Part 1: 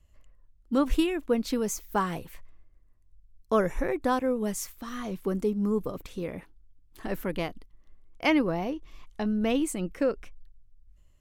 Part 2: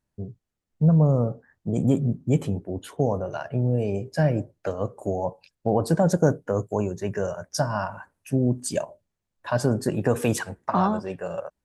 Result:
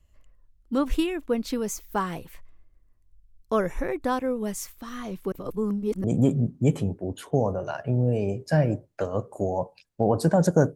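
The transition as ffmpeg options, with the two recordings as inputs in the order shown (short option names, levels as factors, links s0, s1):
-filter_complex "[0:a]apad=whole_dur=10.75,atrim=end=10.75,asplit=2[s0][s1];[s0]atrim=end=5.322[s2];[s1]atrim=start=5.318:end=6.042,asetpts=PTS-STARTPTS,areverse[s3];[1:a]atrim=start=1.698:end=6.41[s4];[s2][s3]acrossfade=d=0.004:c1=hsin:c2=hsin[s5];[s5][s4]acrossfade=d=0.004:c1=hsin:c2=hsin"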